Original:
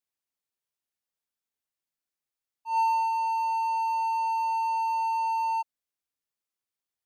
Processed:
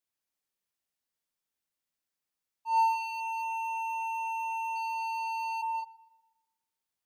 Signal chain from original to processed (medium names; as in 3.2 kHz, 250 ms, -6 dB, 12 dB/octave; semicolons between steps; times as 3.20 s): 3.20–4.76 s: band-stop 4.5 kHz, Q 16; filtered feedback delay 122 ms, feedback 48%, low-pass 3.6 kHz, level -20 dB; reverberation, pre-delay 3 ms, DRR 4.5 dB